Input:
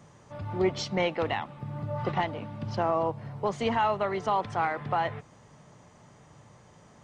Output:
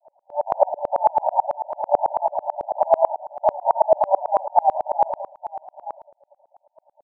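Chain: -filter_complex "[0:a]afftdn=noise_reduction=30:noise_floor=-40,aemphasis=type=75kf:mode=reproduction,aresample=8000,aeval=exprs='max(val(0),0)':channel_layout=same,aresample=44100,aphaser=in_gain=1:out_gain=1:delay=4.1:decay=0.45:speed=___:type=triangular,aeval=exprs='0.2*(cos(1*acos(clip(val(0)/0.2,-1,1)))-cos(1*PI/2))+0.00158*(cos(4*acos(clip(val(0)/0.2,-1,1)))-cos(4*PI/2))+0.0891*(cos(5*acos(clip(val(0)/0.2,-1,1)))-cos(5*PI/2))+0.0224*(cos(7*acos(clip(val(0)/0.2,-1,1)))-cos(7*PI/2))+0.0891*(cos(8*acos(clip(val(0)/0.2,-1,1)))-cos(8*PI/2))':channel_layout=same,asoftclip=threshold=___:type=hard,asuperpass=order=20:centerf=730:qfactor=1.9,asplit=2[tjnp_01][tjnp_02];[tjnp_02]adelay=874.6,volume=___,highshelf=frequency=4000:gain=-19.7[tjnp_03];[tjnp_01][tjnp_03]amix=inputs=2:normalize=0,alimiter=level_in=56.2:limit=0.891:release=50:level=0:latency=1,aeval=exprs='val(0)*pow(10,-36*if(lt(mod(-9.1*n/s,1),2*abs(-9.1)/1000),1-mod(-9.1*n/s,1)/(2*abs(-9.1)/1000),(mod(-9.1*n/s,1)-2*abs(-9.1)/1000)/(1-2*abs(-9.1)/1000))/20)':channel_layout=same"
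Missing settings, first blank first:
1.8, 0.0316, 0.158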